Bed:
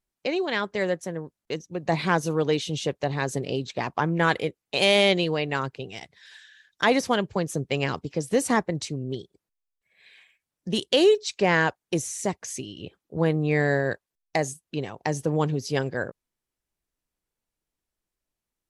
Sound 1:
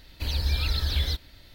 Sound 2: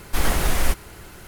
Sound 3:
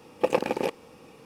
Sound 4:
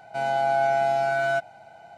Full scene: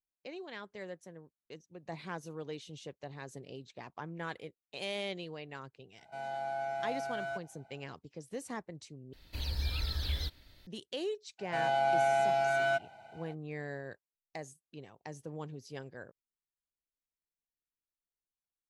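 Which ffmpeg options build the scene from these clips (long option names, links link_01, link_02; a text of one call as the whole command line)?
ffmpeg -i bed.wav -i cue0.wav -i cue1.wav -i cue2.wav -i cue3.wav -filter_complex "[4:a]asplit=2[link_01][link_02];[0:a]volume=-18.5dB[link_03];[link_02]equalizer=frequency=2900:width_type=o:width=0.8:gain=5.5[link_04];[link_03]asplit=2[link_05][link_06];[link_05]atrim=end=9.134[link_07];[1:a]atrim=end=1.54,asetpts=PTS-STARTPTS,volume=-8.5dB[link_08];[link_06]atrim=start=10.666[link_09];[link_01]atrim=end=1.97,asetpts=PTS-STARTPTS,volume=-14.5dB,afade=type=in:duration=0.004:curve=hsin,afade=type=out:start_time=1.966:duration=0.004:curve=hsin,adelay=5980[link_10];[link_04]atrim=end=1.97,asetpts=PTS-STARTPTS,volume=-6dB,afade=type=in:duration=0.02,afade=type=out:start_time=1.95:duration=0.02,adelay=501858S[link_11];[link_07][link_08]acrossfade=duration=0.004:curve1=hsin:curve2=hsin[link_12];[link_12][link_09]acrossfade=duration=0.004:curve1=hsin:curve2=hsin[link_13];[link_13][link_10][link_11]amix=inputs=3:normalize=0" out.wav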